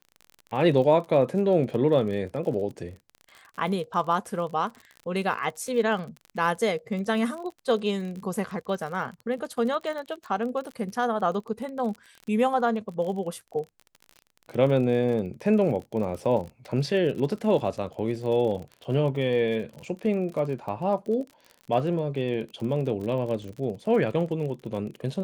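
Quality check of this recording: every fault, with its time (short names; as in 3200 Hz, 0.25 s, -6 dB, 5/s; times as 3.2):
crackle 36/s -34 dBFS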